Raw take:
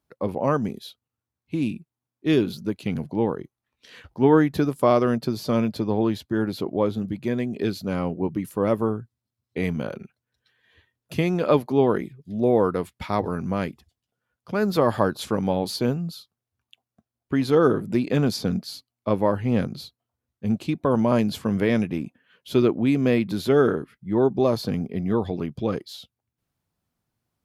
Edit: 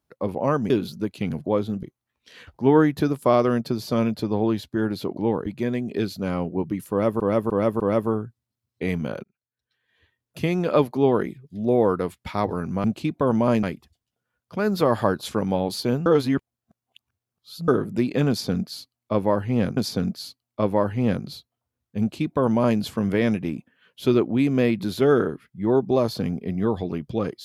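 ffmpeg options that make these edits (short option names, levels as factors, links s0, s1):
-filter_complex "[0:a]asplit=15[s0][s1][s2][s3][s4][s5][s6][s7][s8][s9][s10][s11][s12][s13][s14];[s0]atrim=end=0.702[s15];[s1]atrim=start=2.348:end=3.112[s16];[s2]atrim=start=6.738:end=7.112[s17];[s3]atrim=start=3.398:end=6.742[s18];[s4]atrim=start=3.108:end=3.402[s19];[s5]atrim=start=7.108:end=8.852[s20];[s6]atrim=start=8.548:end=8.852[s21];[s7]atrim=start=8.548:end=8.852[s22];[s8]atrim=start=8.548:end=9.99,asetpts=PTS-STARTPTS,afade=t=out:st=1.438:d=0.004:c=hsin[s23];[s9]atrim=start=9.99:end=13.592,asetpts=PTS-STARTPTS,afade=t=in:d=1.35[s24];[s10]atrim=start=20.478:end=21.272[s25];[s11]atrim=start=13.588:end=16.022[s26];[s12]atrim=start=16.018:end=17.642,asetpts=PTS-STARTPTS,areverse[s27];[s13]atrim=start=17.638:end=19.732[s28];[s14]atrim=start=18.248[s29];[s15][s16]acrossfade=d=0.004:c1=hsin:c2=hsin[s30];[s30][s17]acrossfade=d=0.004:c1=hsin:c2=hsin[s31];[s31][s18]acrossfade=d=0.004:c1=hsin:c2=hsin[s32];[s32][s19]acrossfade=d=0.004:c1=hsin:c2=hsin[s33];[s33][s20]acrossfade=d=0.004:c1=hsin:c2=hsin[s34];[s34][s21]acrossfade=d=0.004:c1=hsin:c2=hsin[s35];[s35][s22]acrossfade=d=0.004:c1=hsin:c2=hsin[s36];[s23][s24]concat=n=2:v=0:a=1[s37];[s36][s37]acrossfade=d=0.004:c1=hsin:c2=hsin[s38];[s38][s25]acrossfade=d=0.004:c1=hsin:c2=hsin[s39];[s39][s26]acrossfade=d=0.004:c1=hsin:c2=hsin[s40];[s40][s27]acrossfade=d=0.004:c1=hsin:c2=hsin[s41];[s41][s28]acrossfade=d=0.004:c1=hsin:c2=hsin[s42];[s42][s29]acrossfade=d=0.004:c1=hsin:c2=hsin"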